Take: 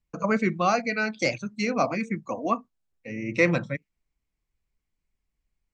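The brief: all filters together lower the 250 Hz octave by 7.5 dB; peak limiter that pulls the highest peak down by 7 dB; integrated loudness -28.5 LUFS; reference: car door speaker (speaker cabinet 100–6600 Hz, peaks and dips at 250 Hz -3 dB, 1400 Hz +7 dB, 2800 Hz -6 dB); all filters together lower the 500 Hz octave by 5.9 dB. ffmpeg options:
-af "equalizer=f=250:t=o:g=-7.5,equalizer=f=500:t=o:g=-5.5,alimiter=limit=-17.5dB:level=0:latency=1,highpass=100,equalizer=f=250:t=q:w=4:g=-3,equalizer=f=1.4k:t=q:w=4:g=7,equalizer=f=2.8k:t=q:w=4:g=-6,lowpass=f=6.6k:w=0.5412,lowpass=f=6.6k:w=1.3066,volume=2dB"

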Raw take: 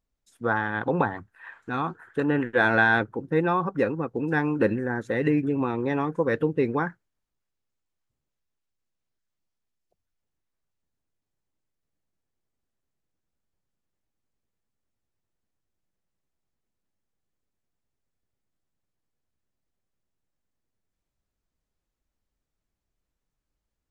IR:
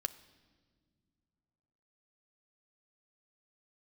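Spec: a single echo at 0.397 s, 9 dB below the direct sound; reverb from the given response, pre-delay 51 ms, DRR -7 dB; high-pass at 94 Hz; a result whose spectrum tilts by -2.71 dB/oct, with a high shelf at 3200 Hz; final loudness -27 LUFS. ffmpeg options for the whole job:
-filter_complex "[0:a]highpass=94,highshelf=f=3.2k:g=-5,aecho=1:1:397:0.355,asplit=2[a][b];[1:a]atrim=start_sample=2205,adelay=51[c];[b][c]afir=irnorm=-1:irlink=0,volume=7dB[d];[a][d]amix=inputs=2:normalize=0,volume=-9dB"

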